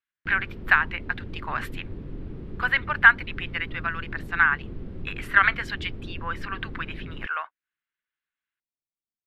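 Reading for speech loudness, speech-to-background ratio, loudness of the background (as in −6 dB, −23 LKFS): −24.5 LKFS, 15.0 dB, −39.5 LKFS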